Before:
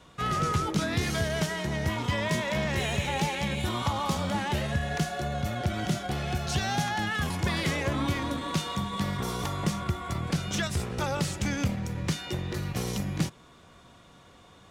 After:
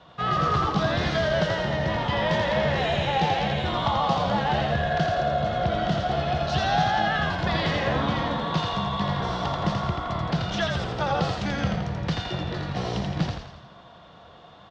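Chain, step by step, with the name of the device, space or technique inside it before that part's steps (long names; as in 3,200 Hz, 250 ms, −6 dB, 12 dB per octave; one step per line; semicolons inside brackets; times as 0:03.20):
frequency-shifting delay pedal into a guitar cabinet (echo with shifted repeats 84 ms, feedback 53%, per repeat −59 Hz, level −3 dB; loudspeaker in its box 77–4,400 Hz, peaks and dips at 100 Hz −6 dB, 260 Hz −7 dB, 390 Hz −4 dB, 700 Hz +7 dB, 2,300 Hz −7 dB)
level +3.5 dB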